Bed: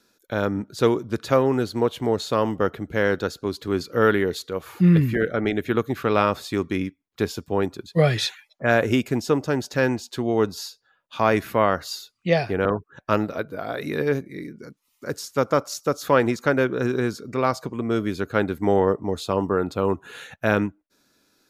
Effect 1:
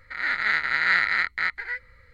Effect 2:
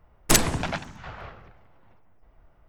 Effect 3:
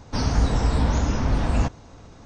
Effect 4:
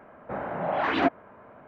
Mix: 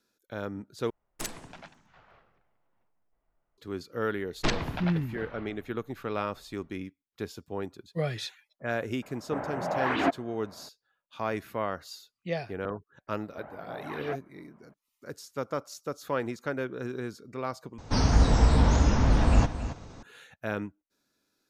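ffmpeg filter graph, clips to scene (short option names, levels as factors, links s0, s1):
-filter_complex "[2:a]asplit=2[s0][s1];[4:a]asplit=2[s2][s3];[0:a]volume=0.251[s4];[s0]equalizer=f=67:t=o:w=1.7:g=-10.5[s5];[s1]lowpass=f=4600:w=0.5412,lowpass=f=4600:w=1.3066[s6];[s3]aphaser=in_gain=1:out_gain=1:delay=1.8:decay=0.37:speed=1.5:type=triangular[s7];[3:a]aecho=1:1:273:0.251[s8];[s4]asplit=3[s9][s10][s11];[s9]atrim=end=0.904[s12];[s5]atrim=end=2.68,asetpts=PTS-STARTPTS,volume=0.133[s13];[s10]atrim=start=3.576:end=17.784[s14];[s8]atrim=end=2.25,asetpts=PTS-STARTPTS,volume=0.944[s15];[s11]atrim=start=20.026[s16];[s6]atrim=end=2.68,asetpts=PTS-STARTPTS,volume=0.473,afade=t=in:d=0.004:c=hsin,afade=t=out:st=2.676:d=0.004:c=hsin,adelay=4140[s17];[s2]atrim=end=1.67,asetpts=PTS-STARTPTS,volume=0.75,afade=t=in:d=0.004:c=hsin,afade=t=out:st=1.666:d=0.004:c=hsin,adelay=9020[s18];[s7]atrim=end=1.67,asetpts=PTS-STARTPTS,volume=0.178,afade=t=in:d=0.004:c=hsin,afade=t=out:st=1.666:d=0.004:c=hsin,adelay=13070[s19];[s12][s13]acrossfade=d=0.004:c1=hsin:c2=hsin[s20];[s20][s14]acrossfade=d=0.004:c1=hsin:c2=hsin[s21];[s21][s15]acrossfade=d=0.004:c1=hsin:c2=hsin[s22];[s22][s16]acrossfade=d=0.004:c1=hsin:c2=hsin[s23];[s23][s17][s18][s19]amix=inputs=4:normalize=0"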